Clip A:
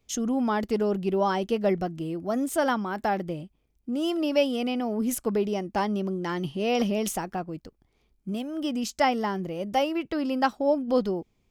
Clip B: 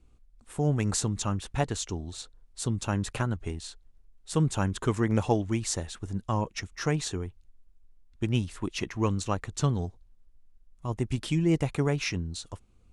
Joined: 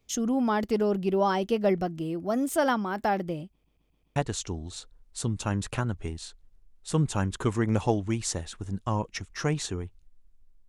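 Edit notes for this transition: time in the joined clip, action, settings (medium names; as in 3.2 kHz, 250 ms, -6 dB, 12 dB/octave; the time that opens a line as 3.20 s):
clip A
3.51 s: stutter in place 0.13 s, 5 plays
4.16 s: go over to clip B from 1.58 s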